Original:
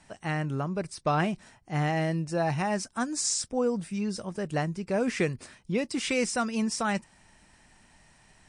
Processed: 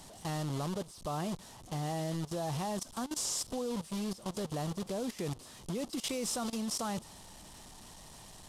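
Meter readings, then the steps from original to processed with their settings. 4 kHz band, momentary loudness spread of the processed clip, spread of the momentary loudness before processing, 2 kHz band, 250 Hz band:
−3.5 dB, 17 LU, 6 LU, −15.0 dB, −7.0 dB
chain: linear delta modulator 64 kbit/s, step −28.5 dBFS
flat-topped bell 1,900 Hz −9 dB 1.1 octaves
output level in coarse steps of 17 dB
level −1 dB

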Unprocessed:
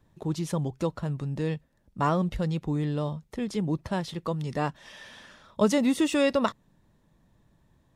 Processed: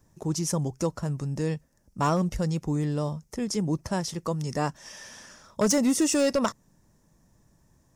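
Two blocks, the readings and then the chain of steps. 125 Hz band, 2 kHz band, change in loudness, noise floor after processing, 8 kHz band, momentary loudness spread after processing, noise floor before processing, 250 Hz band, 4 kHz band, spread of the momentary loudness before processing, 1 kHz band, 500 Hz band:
+1.0 dB, −1.5 dB, +1.0 dB, −65 dBFS, +11.5 dB, 17 LU, −66 dBFS, +0.5 dB, +2.0 dB, 13 LU, 0.0 dB, 0.0 dB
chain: high shelf with overshoot 4,600 Hz +7 dB, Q 3
hard clipping −18 dBFS, distortion −18 dB
level +1 dB

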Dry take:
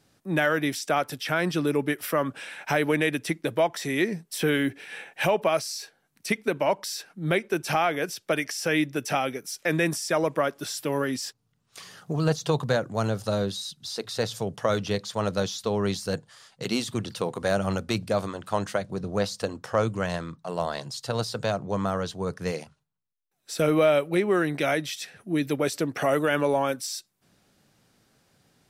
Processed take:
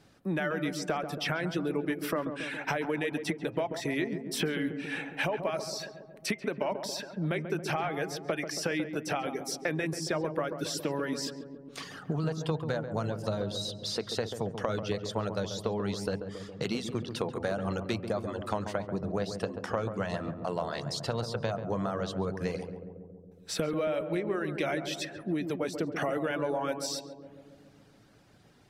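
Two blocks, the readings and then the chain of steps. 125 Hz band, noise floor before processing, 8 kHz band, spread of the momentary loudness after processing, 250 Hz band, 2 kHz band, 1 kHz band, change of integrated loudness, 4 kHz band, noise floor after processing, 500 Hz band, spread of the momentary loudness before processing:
−4.5 dB, −72 dBFS, −5.5 dB, 5 LU, −5.0 dB, −6.5 dB, −6.5 dB, −6.0 dB, −4.5 dB, −56 dBFS, −6.5 dB, 9 LU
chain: hum removal 130.4 Hz, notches 24
reverb reduction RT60 0.64 s
high-shelf EQ 6,000 Hz −11.5 dB
downward compressor 6 to 1, threshold −35 dBFS, peak gain reduction 16 dB
on a send: feedback echo with a low-pass in the loop 138 ms, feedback 75%, low-pass 950 Hz, level −7 dB
on the sum: level +5.5 dB

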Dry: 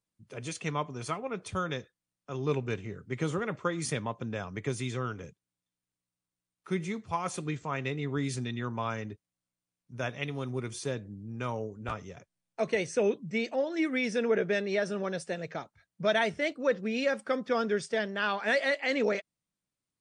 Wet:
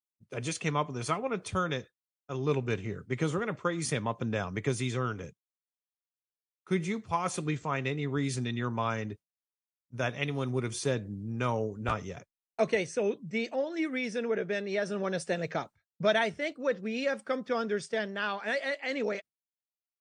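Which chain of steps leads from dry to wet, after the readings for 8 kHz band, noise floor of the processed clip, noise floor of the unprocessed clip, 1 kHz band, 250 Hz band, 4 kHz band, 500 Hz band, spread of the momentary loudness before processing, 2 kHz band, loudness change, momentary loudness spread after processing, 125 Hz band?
+1.5 dB, below −85 dBFS, below −85 dBFS, +1.0 dB, +0.5 dB, 0.0 dB, −0.5 dB, 11 LU, −1.0 dB, 0.0 dB, 6 LU, +2.0 dB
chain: speech leveller within 5 dB 0.5 s
downward expander −41 dBFS

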